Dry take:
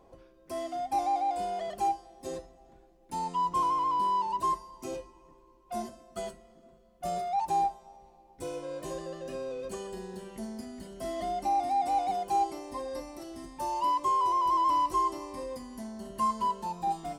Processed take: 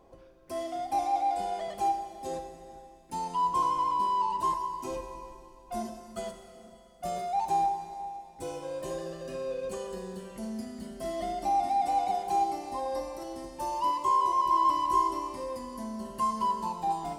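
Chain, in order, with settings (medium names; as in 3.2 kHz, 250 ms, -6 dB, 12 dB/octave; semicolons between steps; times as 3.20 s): 4.87–5.80 s: bass shelf 64 Hz +11.5 dB; Schroeder reverb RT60 2.7 s, combs from 32 ms, DRR 6.5 dB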